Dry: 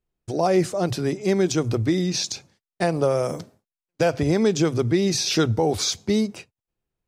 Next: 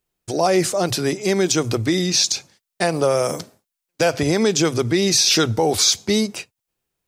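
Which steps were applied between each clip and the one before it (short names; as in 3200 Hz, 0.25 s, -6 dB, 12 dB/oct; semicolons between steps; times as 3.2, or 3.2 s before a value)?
tilt +2 dB/oct; in parallel at 0 dB: limiter -16 dBFS, peak gain reduction 7.5 dB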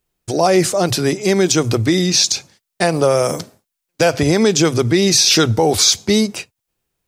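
low shelf 140 Hz +4 dB; gain +3.5 dB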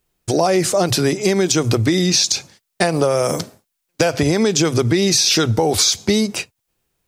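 compressor, threshold -16 dBFS, peak gain reduction 7.5 dB; gain +3.5 dB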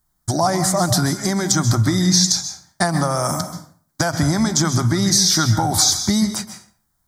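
fixed phaser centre 1100 Hz, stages 4; reverb RT60 0.50 s, pre-delay 0.122 s, DRR 8.5 dB; gain +3 dB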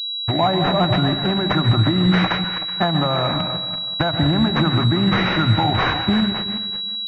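regenerating reverse delay 0.188 s, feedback 42%, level -9.5 dB; pulse-width modulation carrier 3900 Hz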